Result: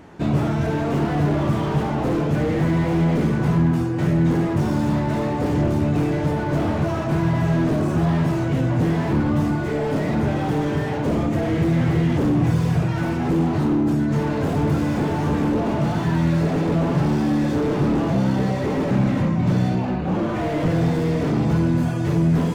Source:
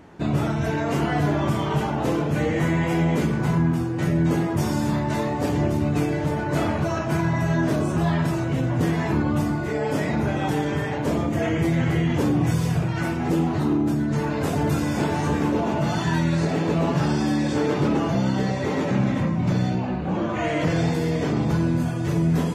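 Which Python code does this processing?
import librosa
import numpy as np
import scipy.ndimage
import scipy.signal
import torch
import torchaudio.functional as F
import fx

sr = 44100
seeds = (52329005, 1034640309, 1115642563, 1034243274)

y = fx.slew_limit(x, sr, full_power_hz=35.0)
y = F.gain(torch.from_numpy(y), 3.0).numpy()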